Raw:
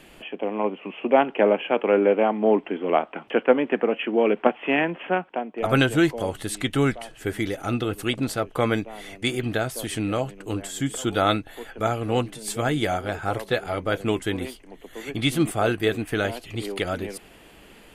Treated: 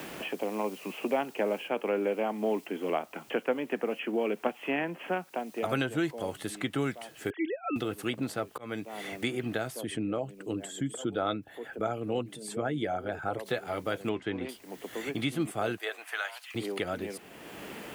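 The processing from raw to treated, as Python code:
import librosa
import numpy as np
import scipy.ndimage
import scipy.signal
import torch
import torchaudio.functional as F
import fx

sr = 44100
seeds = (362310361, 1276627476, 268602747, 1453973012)

y = fx.noise_floor_step(x, sr, seeds[0], at_s=1.68, before_db=-50, after_db=-57, tilt_db=0.0)
y = fx.sine_speech(y, sr, at=(7.3, 7.76))
y = fx.envelope_sharpen(y, sr, power=1.5, at=(9.81, 13.46))
y = fx.lowpass(y, sr, hz=2800.0, slope=12, at=(14.09, 14.49))
y = fx.highpass(y, sr, hz=fx.line((15.76, 510.0), (16.54, 1200.0)), slope=24, at=(15.76, 16.54), fade=0.02)
y = fx.edit(y, sr, fx.fade_in_span(start_s=8.58, length_s=0.47), tone=tone)
y = scipy.signal.sosfilt(scipy.signal.butter(2, 110.0, 'highpass', fs=sr, output='sos'), y)
y = fx.band_squash(y, sr, depth_pct=70)
y = y * 10.0 ** (-8.5 / 20.0)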